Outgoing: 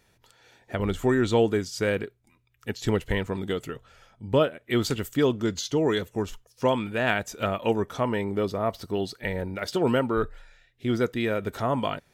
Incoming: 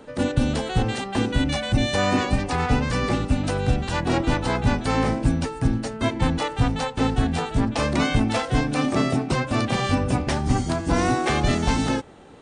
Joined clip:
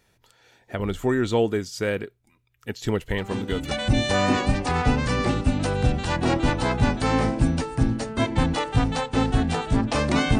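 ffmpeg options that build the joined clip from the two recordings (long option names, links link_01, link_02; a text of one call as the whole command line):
ffmpeg -i cue0.wav -i cue1.wav -filter_complex "[1:a]asplit=2[link_01][link_02];[0:a]apad=whole_dur=10.39,atrim=end=10.39,atrim=end=3.712[link_03];[link_02]atrim=start=1.548:end=8.23[link_04];[link_01]atrim=start=1.02:end=1.55,asetpts=PTS-STARTPTS,volume=-9dB,afade=type=in:duration=0.004:curve=hsin,afade=type=out:start_time=0.526:duration=0.004:curve=hsin,adelay=3180[link_05];[link_03][link_04]acrossfade=duration=0.004:curve1=hsin:curve2=hsin[link_06];[link_06][link_05]amix=inputs=2:normalize=0" out.wav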